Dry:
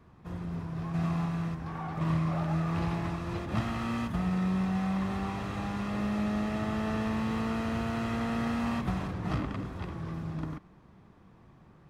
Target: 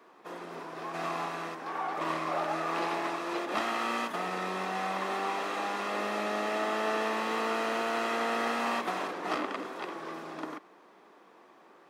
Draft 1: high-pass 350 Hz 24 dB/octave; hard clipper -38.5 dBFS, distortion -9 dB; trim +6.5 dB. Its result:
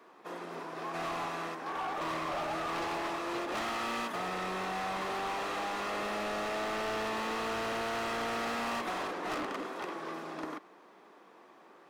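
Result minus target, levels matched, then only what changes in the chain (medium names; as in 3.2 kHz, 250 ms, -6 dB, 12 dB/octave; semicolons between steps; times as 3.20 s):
hard clipper: distortion +28 dB
change: hard clipper -27 dBFS, distortion -37 dB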